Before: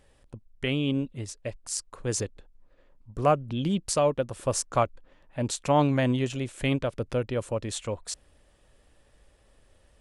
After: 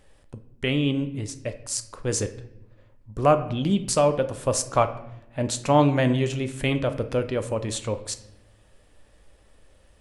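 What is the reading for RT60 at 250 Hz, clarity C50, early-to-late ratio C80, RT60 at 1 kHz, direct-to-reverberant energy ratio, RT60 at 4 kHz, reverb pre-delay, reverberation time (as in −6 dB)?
1.3 s, 12.5 dB, 15.5 dB, 0.75 s, 8.5 dB, 0.60 s, 10 ms, 0.80 s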